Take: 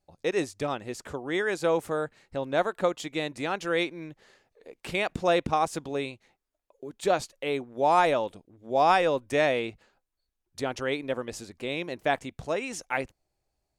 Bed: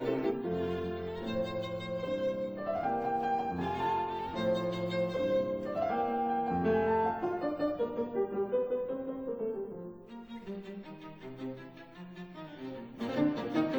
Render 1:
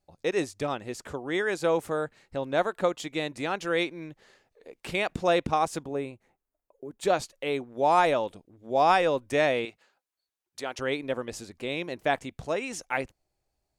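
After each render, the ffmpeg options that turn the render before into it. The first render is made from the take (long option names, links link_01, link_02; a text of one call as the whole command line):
ffmpeg -i in.wav -filter_complex "[0:a]asettb=1/sr,asplit=3[link_01][link_02][link_03];[link_01]atrim=end=5.834[link_04];[link_02]atrim=start=5.83:end=7.01,asetpts=PTS-STARTPTS,afade=type=in:duration=0.004:curve=qsin,afade=type=out:start_time=1.176:duration=0.004:curve=qsin,equalizer=frequency=4100:width_type=o:width=1.8:gain=-14[link_05];[link_03]atrim=start=7.006[link_06];[link_04][link_05]acrossfade=duration=0.004:curve1=hsin:curve2=qsin[link_07];[link_07][link_06]acrossfade=duration=0.004:curve1=qsin:curve2=hsin,asettb=1/sr,asplit=3[link_08][link_09][link_10];[link_08]atrim=end=9.654[link_11];[link_09]atrim=start=9.65:end=10.79,asetpts=PTS-STARTPTS,afade=type=in:duration=0.004:curve=qsin,afade=type=out:start_time=1.136:duration=0.004:curve=qsin,highpass=frequency=690:poles=1[link_12];[link_10]atrim=start=10.786[link_13];[link_11][link_12]acrossfade=duration=0.004:curve1=hsin:curve2=qsin[link_14];[link_14][link_13]acrossfade=duration=0.004:curve1=qsin:curve2=hsin" out.wav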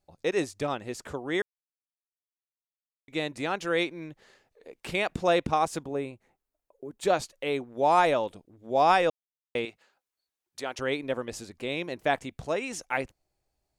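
ffmpeg -i in.wav -filter_complex "[0:a]asplit=5[link_01][link_02][link_03][link_04][link_05];[link_01]atrim=end=1.42,asetpts=PTS-STARTPTS,afade=type=out:start_time=1.416:duration=0.004:curve=hsin[link_06];[link_02]atrim=start=1.42:end=3.08,asetpts=PTS-STARTPTS,volume=0[link_07];[link_03]atrim=start=3.08:end=9.1,asetpts=PTS-STARTPTS,afade=type=in:duration=0.004:curve=hsin,afade=type=out:start_time=6.016:duration=0.004:curve=hsin[link_08];[link_04]atrim=start=9.1:end=9.55,asetpts=PTS-STARTPTS,volume=0[link_09];[link_05]atrim=start=9.55,asetpts=PTS-STARTPTS,afade=type=in:duration=0.004:curve=hsin[link_10];[link_06][link_07][link_08][link_09][link_10]concat=n=5:v=0:a=1" out.wav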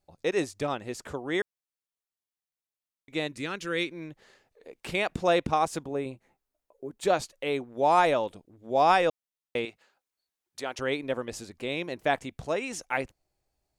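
ffmpeg -i in.wav -filter_complex "[0:a]asettb=1/sr,asplit=3[link_01][link_02][link_03];[link_01]atrim=end=3.274[link_04];[link_02]atrim=start=3.27:end=3.92,asetpts=PTS-STARTPTS,afade=type=in:duration=0.004:curve=qsin,afade=type=out:start_time=0.646:duration=0.004:curve=qsin,equalizer=frequency=750:width=1.6:gain=-14[link_05];[link_03]atrim=start=3.916[link_06];[link_04][link_05]acrossfade=duration=0.004:curve1=hsin:curve2=qsin[link_07];[link_07][link_06]acrossfade=duration=0.004:curve1=qsin:curve2=hsin,asettb=1/sr,asplit=3[link_08][link_09][link_10];[link_08]atrim=end=6.044[link_11];[link_09]atrim=start=6.04:end=6.9,asetpts=PTS-STARTPTS,afade=type=in:duration=0.004:curve=qsin,afade=type=out:start_time=0.856:duration=0.004:curve=qsin,asplit=2[link_12][link_13];[link_13]adelay=15,volume=-6.5dB[link_14];[link_12][link_14]amix=inputs=2:normalize=0,atrim=end_sample=37926[link_15];[link_10]atrim=start=6.896[link_16];[link_11][link_15]acrossfade=duration=0.004:curve1=hsin:curve2=qsin[link_17];[link_17][link_16]acrossfade=duration=0.004:curve1=qsin:curve2=hsin" out.wav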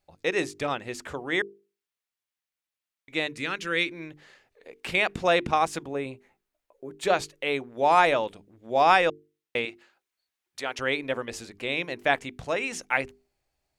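ffmpeg -i in.wav -af "equalizer=frequency=2200:width_type=o:width=1.8:gain=6.5,bandreject=frequency=50:width_type=h:width=6,bandreject=frequency=100:width_type=h:width=6,bandreject=frequency=150:width_type=h:width=6,bandreject=frequency=200:width_type=h:width=6,bandreject=frequency=250:width_type=h:width=6,bandreject=frequency=300:width_type=h:width=6,bandreject=frequency=350:width_type=h:width=6,bandreject=frequency=400:width_type=h:width=6,bandreject=frequency=450:width_type=h:width=6" out.wav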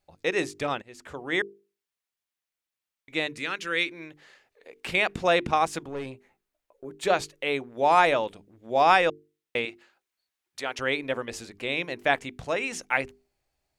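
ffmpeg -i in.wav -filter_complex "[0:a]asettb=1/sr,asplit=3[link_01][link_02][link_03];[link_01]atrim=end=3.394[link_04];[link_02]atrim=start=3.39:end=4.76,asetpts=PTS-STARTPTS,afade=type=in:duration=0.004:curve=qsin,afade=type=out:start_time=1.366:duration=0.004:curve=qsin,lowshelf=frequency=240:gain=-8.5[link_05];[link_03]atrim=start=4.756[link_06];[link_04][link_05]acrossfade=duration=0.004:curve1=hsin:curve2=qsin[link_07];[link_07][link_06]acrossfade=duration=0.004:curve1=qsin:curve2=hsin,asettb=1/sr,asplit=3[link_08][link_09][link_10];[link_08]atrim=end=5.814[link_11];[link_09]atrim=start=5.81:end=6.85,asetpts=PTS-STARTPTS,afade=type=in:duration=0.004:curve=qsin,afade=type=out:start_time=1.036:duration=0.004:curve=qsin,aeval=exprs='(tanh(25.1*val(0)+0.25)-tanh(0.25))/25.1':channel_layout=same[link_12];[link_10]atrim=start=6.846[link_13];[link_11][link_12]acrossfade=duration=0.004:curve1=hsin:curve2=qsin[link_14];[link_14][link_13]acrossfade=duration=0.004:curve1=qsin:curve2=hsin,asplit=2[link_15][link_16];[link_15]atrim=end=0.82,asetpts=PTS-STARTPTS,afade=type=out:start_time=0.816:duration=0.004:curve=hsin:silence=0.0891251[link_17];[link_16]atrim=start=0.82,asetpts=PTS-STARTPTS,afade=type=in:duration=0.53:silence=0.0891251[link_18];[link_17][link_18]concat=n=2:v=0:a=1" out.wav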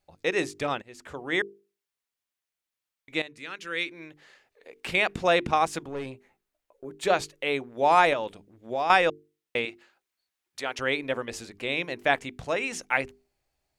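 ffmpeg -i in.wav -filter_complex "[0:a]asettb=1/sr,asplit=3[link_01][link_02][link_03];[link_01]atrim=end=8.134[link_04];[link_02]atrim=start=8.13:end=8.9,asetpts=PTS-STARTPTS,afade=type=in:duration=0.004:curve=qsin,afade=type=out:start_time=0.766:duration=0.004:curve=qsin,acompressor=threshold=-26dB:ratio=3:attack=3.2:release=140:knee=1:detection=peak[link_05];[link_03]atrim=start=8.896[link_06];[link_04][link_05]acrossfade=duration=0.004:curve1=hsin:curve2=qsin[link_07];[link_07][link_06]acrossfade=duration=0.004:curve1=qsin:curve2=hsin,asplit=2[link_08][link_09];[link_08]atrim=end=3.22,asetpts=PTS-STARTPTS,afade=type=out:start_time=3.216:duration=0.004:curve=hsin:silence=0.211349[link_10];[link_09]atrim=start=3.22,asetpts=PTS-STARTPTS,afade=type=in:duration=1.56:curve=qsin:silence=0.211349[link_11];[link_10][link_11]concat=n=2:v=0:a=1" out.wav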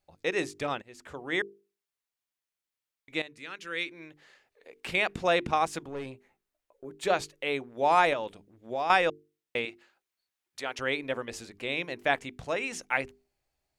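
ffmpeg -i in.wav -af "volume=-3dB" out.wav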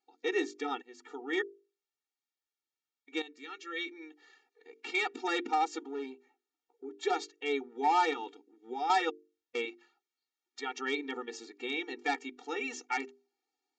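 ffmpeg -i in.wav -af "aresample=16000,volume=19dB,asoftclip=hard,volume=-19dB,aresample=44100,afftfilt=real='re*eq(mod(floor(b*sr/1024/240),2),1)':imag='im*eq(mod(floor(b*sr/1024/240),2),1)':win_size=1024:overlap=0.75" out.wav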